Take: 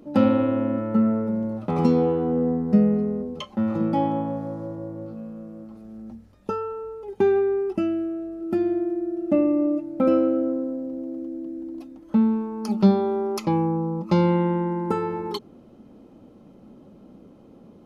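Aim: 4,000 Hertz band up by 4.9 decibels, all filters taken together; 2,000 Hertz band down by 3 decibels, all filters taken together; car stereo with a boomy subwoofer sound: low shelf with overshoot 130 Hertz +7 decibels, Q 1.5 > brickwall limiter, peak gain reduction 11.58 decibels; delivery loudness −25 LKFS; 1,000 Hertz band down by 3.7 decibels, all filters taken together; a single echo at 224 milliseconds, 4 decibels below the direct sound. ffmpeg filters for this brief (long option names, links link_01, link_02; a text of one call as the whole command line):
ffmpeg -i in.wav -af "lowshelf=frequency=130:width_type=q:width=1.5:gain=7,equalizer=frequency=1000:width_type=o:gain=-4,equalizer=frequency=2000:width_type=o:gain=-5,equalizer=frequency=4000:width_type=o:gain=8,aecho=1:1:224:0.631,volume=2.5dB,alimiter=limit=-16.5dB:level=0:latency=1" out.wav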